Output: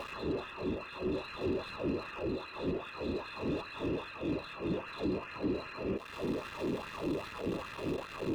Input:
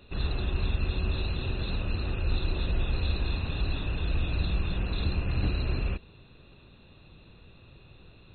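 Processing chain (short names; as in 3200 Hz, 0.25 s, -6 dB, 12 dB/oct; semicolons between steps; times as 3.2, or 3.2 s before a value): zero-crossing step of -41 dBFS; compressor, threshold -37 dBFS, peak gain reduction 15 dB; LFO high-pass sine 2.5 Hz 290–1600 Hz; sample leveller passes 3; tilt -4 dB/oct; notch comb 750 Hz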